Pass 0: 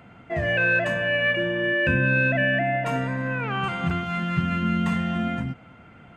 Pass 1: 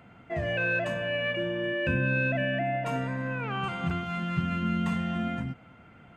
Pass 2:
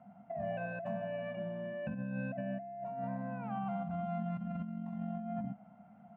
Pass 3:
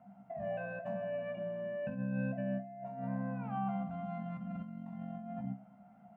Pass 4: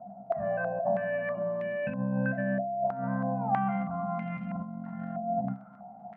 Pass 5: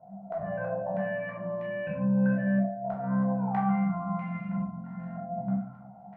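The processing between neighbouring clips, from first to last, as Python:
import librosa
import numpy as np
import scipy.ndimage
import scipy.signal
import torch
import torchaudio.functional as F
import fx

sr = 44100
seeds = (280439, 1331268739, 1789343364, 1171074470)

y1 = fx.dynamic_eq(x, sr, hz=1800.0, q=3.1, threshold_db=-37.0, ratio=4.0, max_db=-6)
y1 = y1 * librosa.db_to_amplitude(-4.5)
y2 = fx.double_bandpass(y1, sr, hz=380.0, octaves=1.8)
y2 = fx.over_compress(y2, sr, threshold_db=-40.0, ratio=-1.0)
y2 = y2 * librosa.db_to_amplitude(1.5)
y3 = fx.comb_fb(y2, sr, f0_hz=65.0, decay_s=0.22, harmonics='all', damping=0.0, mix_pct=80)
y3 = y3 * librosa.db_to_amplitude(3.5)
y4 = fx.dmg_crackle(y3, sr, seeds[0], per_s=33.0, level_db=-49.0)
y4 = fx.filter_held_lowpass(y4, sr, hz=3.1, low_hz=670.0, high_hz=2300.0)
y4 = y4 * librosa.db_to_amplitude(5.5)
y5 = fx.room_shoebox(y4, sr, seeds[1], volume_m3=760.0, walls='furnished', distance_m=4.7)
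y5 = y5 * librosa.db_to_amplitude(-7.5)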